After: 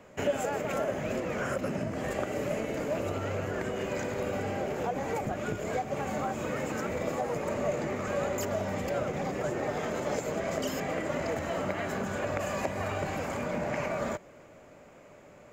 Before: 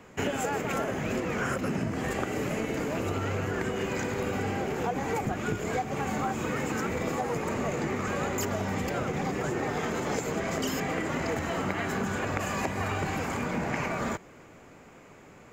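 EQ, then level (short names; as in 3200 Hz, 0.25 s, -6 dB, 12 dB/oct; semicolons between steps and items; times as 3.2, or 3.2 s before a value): bell 590 Hz +11.5 dB 0.3 oct; -4.0 dB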